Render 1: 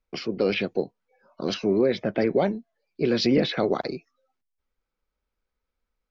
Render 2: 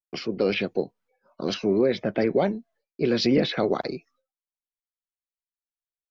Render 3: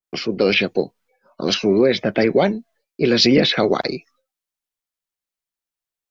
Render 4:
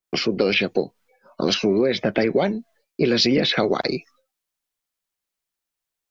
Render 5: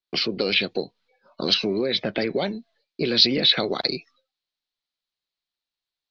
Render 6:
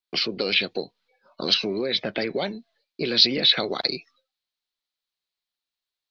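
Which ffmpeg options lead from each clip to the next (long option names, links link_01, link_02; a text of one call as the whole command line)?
ffmpeg -i in.wav -af "agate=range=-33dB:threshold=-56dB:ratio=3:detection=peak" out.wav
ffmpeg -i in.wav -af "adynamicequalizer=threshold=0.0112:dfrequency=1600:dqfactor=0.7:tfrequency=1600:tqfactor=0.7:attack=5:release=100:ratio=0.375:range=3:mode=boostabove:tftype=highshelf,volume=6dB" out.wav
ffmpeg -i in.wav -af "acompressor=threshold=-22dB:ratio=3,volume=4dB" out.wav
ffmpeg -i in.wav -af "lowpass=frequency=4100:width_type=q:width=4,volume=-5.5dB" out.wav
ffmpeg -i in.wav -af "lowshelf=frequency=460:gain=-4.5" out.wav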